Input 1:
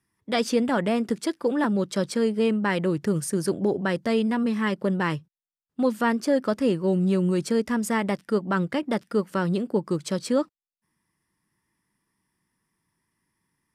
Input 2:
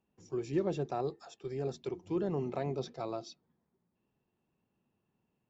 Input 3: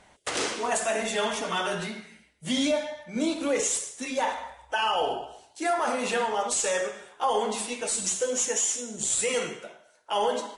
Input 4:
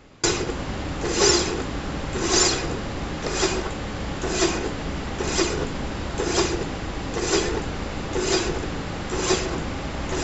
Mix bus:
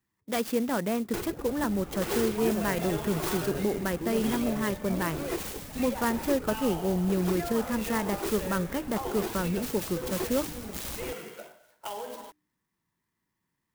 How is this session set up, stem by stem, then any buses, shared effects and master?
−5.0 dB, 0.00 s, no send, no processing
−2.5 dB, 1.90 s, no send, no processing
−1.0 dB, 1.75 s, no send, downward compressor, threshold −34 dBFS, peak gain reduction 12.5 dB
−10.5 dB, 0.90 s, no send, reverb reduction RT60 0.8 s; high-shelf EQ 3,300 Hz −9 dB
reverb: not used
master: hum removal 150.8 Hz, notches 2; converter with an unsteady clock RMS 0.049 ms

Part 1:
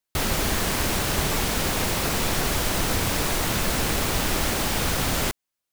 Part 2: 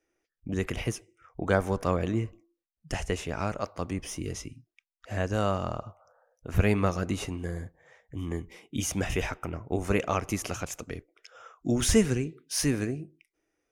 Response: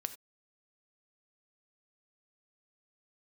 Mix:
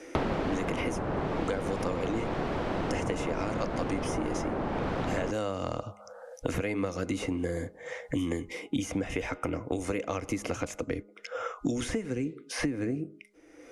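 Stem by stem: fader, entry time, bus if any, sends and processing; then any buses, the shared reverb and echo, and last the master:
+3.0 dB, 0.00 s, no send, low-pass filter 1,300 Hz 12 dB per octave; tilt shelving filter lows +5.5 dB; automatic ducking −9 dB, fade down 0.90 s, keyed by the second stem
−1.0 dB, 0.00 s, no send, low-pass filter 11,000 Hz 24 dB per octave; hollow resonant body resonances 290/490/2,100 Hz, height 11 dB; downward compressor, threshold −25 dBFS, peak gain reduction 13 dB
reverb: not used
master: low-shelf EQ 150 Hz −11.5 dB; hum removal 206 Hz, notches 7; multiband upward and downward compressor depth 100%

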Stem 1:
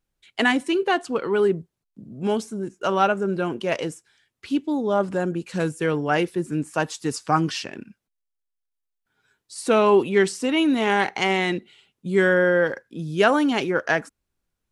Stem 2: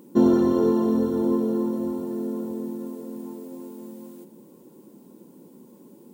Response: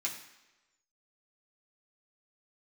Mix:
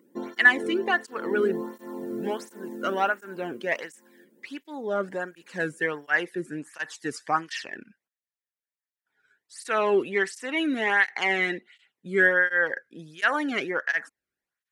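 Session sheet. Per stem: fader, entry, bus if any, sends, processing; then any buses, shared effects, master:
−5.0 dB, 0.00 s, no send, no processing
0:01.07 −10.5 dB → 0:01.69 −1.5 dB → 0:02.98 −1.5 dB → 0:03.65 −10.5 dB, 0.00 s, no send, no processing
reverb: not used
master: parametric band 1,800 Hz +14.5 dB 0.53 octaves; through-zero flanger with one copy inverted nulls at 1.4 Hz, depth 1.2 ms

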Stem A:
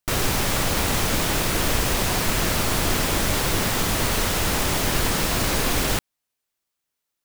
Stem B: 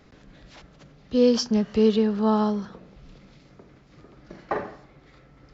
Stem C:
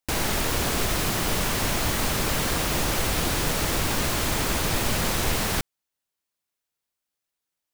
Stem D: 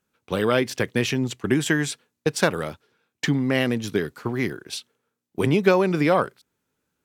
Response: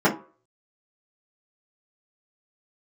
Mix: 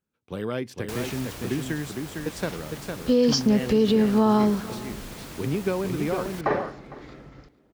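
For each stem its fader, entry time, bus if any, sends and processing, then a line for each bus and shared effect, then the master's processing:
−18.0 dB, 1.30 s, no send, echo send −14 dB, resonant band-pass 290 Hz, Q 1.2
−1.0 dB, 1.95 s, no send, echo send −23.5 dB, automatic gain control gain up to 7 dB
−4.5 dB, 0.80 s, no send, no echo send, high-pass filter 41 Hz; automatic ducking −12 dB, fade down 1.75 s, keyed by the fourth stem
−13.0 dB, 0.00 s, no send, echo send −5 dB, low-shelf EQ 460 Hz +8 dB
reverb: not used
echo: single-tap delay 457 ms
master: brickwall limiter −12 dBFS, peak gain reduction 8 dB

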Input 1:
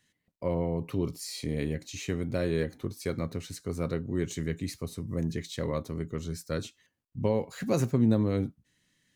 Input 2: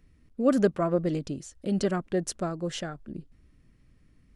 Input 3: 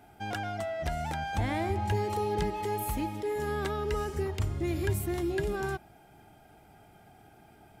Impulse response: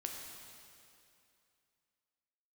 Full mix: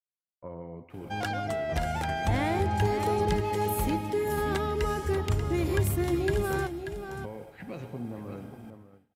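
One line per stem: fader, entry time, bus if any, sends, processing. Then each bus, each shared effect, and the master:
−10.0 dB, 0.00 s, bus A, send −7 dB, echo send −13.5 dB, auto-filter low-pass saw up 0.76 Hz 790–3,400 Hz
−16.0 dB, 0.90 s, bus A, no send, no echo send, no processing
+3.0 dB, 0.90 s, no bus, no send, echo send −9 dB, no processing
bus A: 0.0 dB, downward compressor, threshold −42 dBFS, peak gain reduction 13 dB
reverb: on, RT60 2.6 s, pre-delay 5 ms
echo: single-tap delay 586 ms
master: downward expander −42 dBFS

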